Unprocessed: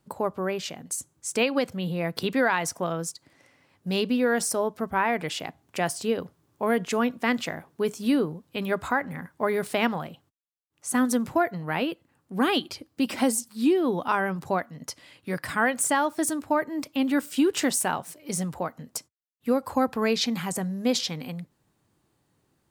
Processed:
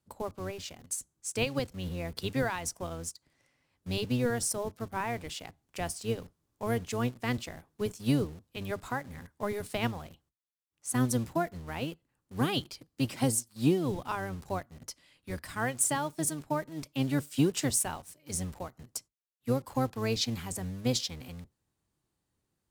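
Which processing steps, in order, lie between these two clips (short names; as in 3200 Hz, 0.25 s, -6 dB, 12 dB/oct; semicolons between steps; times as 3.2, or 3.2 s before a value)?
octaver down 1 oct, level 0 dB; dynamic EQ 1700 Hz, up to -4 dB, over -36 dBFS, Q 1.1; in parallel at -8.5 dB: bit-crush 6-bit; on the sum: bell 8100 Hz +5.5 dB 2.8 oct; upward expander 1.5:1, over -26 dBFS; gain -7.5 dB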